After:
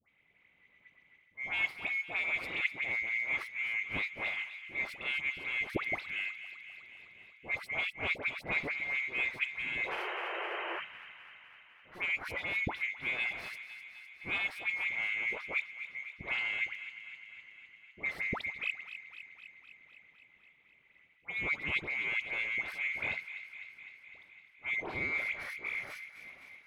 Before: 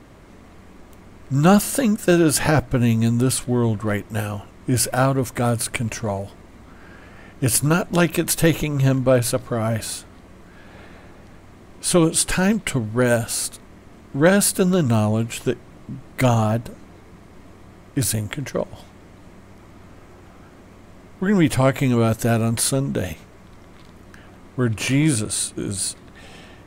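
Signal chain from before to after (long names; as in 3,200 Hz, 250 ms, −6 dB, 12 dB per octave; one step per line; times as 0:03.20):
neighbouring bands swapped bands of 2,000 Hz
high-pass filter 61 Hz
high-shelf EQ 4,600 Hz −5 dB
reversed playback
downward compressor 6 to 1, threshold −27 dBFS, peak gain reduction 15.5 dB
reversed playback
power curve on the samples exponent 2
sound drawn into the spectrogram noise, 0:09.84–0:10.78, 330–3,200 Hz −43 dBFS
high-frequency loss of the air 450 metres
all-pass dispersion highs, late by 91 ms, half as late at 1,400 Hz
on a send: delay with a high-pass on its return 254 ms, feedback 68%, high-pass 1,600 Hz, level −10.5 dB
on the sum: level +8.5 dB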